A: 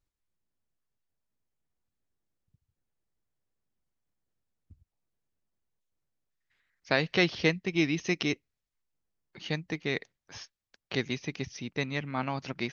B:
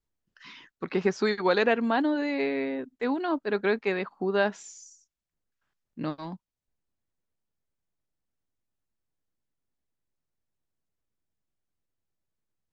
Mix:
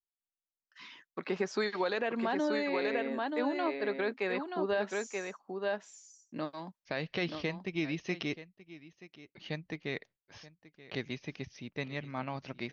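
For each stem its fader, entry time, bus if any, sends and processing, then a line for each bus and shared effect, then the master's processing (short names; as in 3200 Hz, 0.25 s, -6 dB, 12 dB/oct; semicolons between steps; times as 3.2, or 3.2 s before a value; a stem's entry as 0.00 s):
-6.0 dB, 0.00 s, no send, echo send -18 dB, LPF 4700 Hz; gate with hold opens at -55 dBFS
-3.0 dB, 0.35 s, no send, echo send -5.5 dB, expander -52 dBFS; HPF 120 Hz; low shelf 320 Hz -6.5 dB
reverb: off
echo: echo 0.929 s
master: bell 600 Hz +4.5 dB 0.24 oct; notch 1400 Hz, Q 28; limiter -22 dBFS, peak gain reduction 7.5 dB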